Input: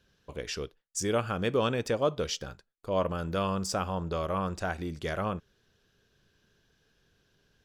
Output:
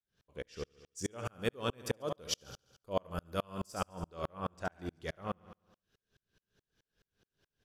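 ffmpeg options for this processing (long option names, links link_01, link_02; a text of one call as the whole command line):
ffmpeg -i in.wav -filter_complex "[0:a]asettb=1/sr,asplit=3[link_01][link_02][link_03];[link_01]atrim=end=1.254[link_04];[link_02]atrim=start=1.25:end=3.76,asetpts=PTS-STARTPTS,afade=type=in:duration=0.004:curve=qsin,afade=type=out:start_time=2.506:duration=0.004:curve=qsin,equalizer=frequency=12000:width=0.8:gain=12.5[link_05];[link_03]atrim=start=3.756[link_06];[link_04][link_05]acrossfade=duration=0.004:curve1=hsin:curve2=qsin[link_07];[link_07][link_06]acrossfade=duration=0.004:curve1=qsin:curve2=hsin,aecho=1:1:70|140|210|280|350|420|490:0.316|0.183|0.106|0.0617|0.0358|0.0208|0.012,aeval=exprs='val(0)*pow(10,-40*if(lt(mod(-4.7*n/s,1),2*abs(-4.7)/1000),1-mod(-4.7*n/s,1)/(2*abs(-4.7)/1000),(mod(-4.7*n/s,1)-2*abs(-4.7)/1000)/(1-2*abs(-4.7)/1000))/20)':channel_layout=same" out.wav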